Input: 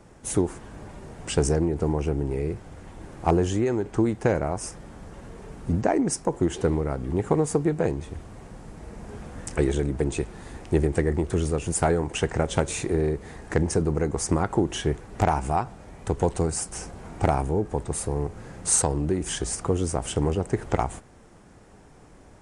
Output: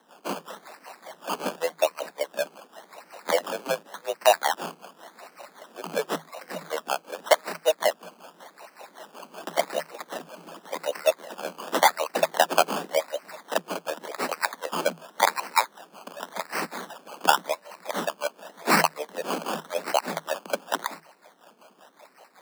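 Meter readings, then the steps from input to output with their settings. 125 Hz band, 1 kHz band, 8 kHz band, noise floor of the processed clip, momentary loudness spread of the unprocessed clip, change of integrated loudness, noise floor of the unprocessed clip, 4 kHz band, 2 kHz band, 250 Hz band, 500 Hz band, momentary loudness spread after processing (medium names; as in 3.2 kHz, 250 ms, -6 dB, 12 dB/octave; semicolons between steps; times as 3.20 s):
-22.0 dB, +4.0 dB, -5.0 dB, -58 dBFS, 18 LU, -1.5 dB, -51 dBFS, +7.0 dB, +7.0 dB, -12.5 dB, -1.5 dB, 22 LU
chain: LFO high-pass sine 5.3 Hz 440–4200 Hz; decimation with a swept rate 19×, swing 60% 0.89 Hz; frequency shift +160 Hz; trim +1 dB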